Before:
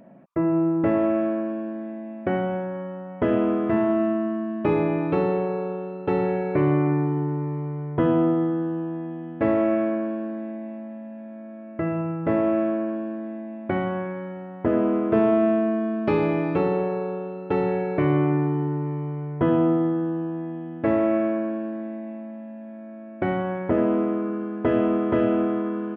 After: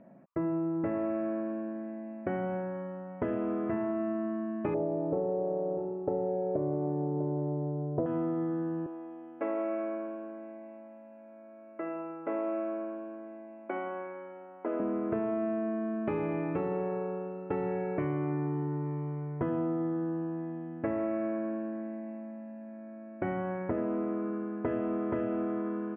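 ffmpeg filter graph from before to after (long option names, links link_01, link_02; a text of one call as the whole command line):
ffmpeg -i in.wav -filter_complex "[0:a]asettb=1/sr,asplit=3[link_01][link_02][link_03];[link_01]atrim=end=4.744[link_04];[link_02]atrim=start=4.74:end=8.06,asetpts=PTS-STARTPTS,afade=type=in:duration=0.004:curve=qsin,afade=type=out:start_time=3.316:duration=0.004:curve=qsin,lowpass=frequency=620:width_type=q:width=3.3,aecho=1:1:647:0.2,atrim=end_sample=146412[link_05];[link_03]atrim=start=8.056[link_06];[link_04][link_05]acrossfade=duration=0.004:curve1=hsin:curve2=qsin[link_07];[link_07][link_06]acrossfade=duration=0.004:curve1=qsin:curve2=hsin,asettb=1/sr,asplit=3[link_08][link_09][link_10];[link_08]atrim=end=8.864[link_11];[link_09]atrim=start=8.86:end=14.8,asetpts=PTS-STARTPTS,afade=type=in:duration=0.004:curve=qsin,afade=type=out:start_time=5.936:duration=0.004:curve=qsin,highpass=frequency=260:width=0.5412,highpass=frequency=260:width=1.3066,lowshelf=frequency=330:gain=-8.5,bandreject=frequency=1800:width=5.2[link_12];[link_10]atrim=start=14.796[link_13];[link_11][link_12]acrossfade=duration=0.004:curve1=hsin:curve2=qsin[link_14];[link_14][link_13]acrossfade=duration=0.004:curve1=qsin:curve2=hsin,lowpass=frequency=2500:width=0.5412,lowpass=frequency=2500:width=1.3066,acompressor=threshold=-22dB:ratio=6,volume=-6dB" out.wav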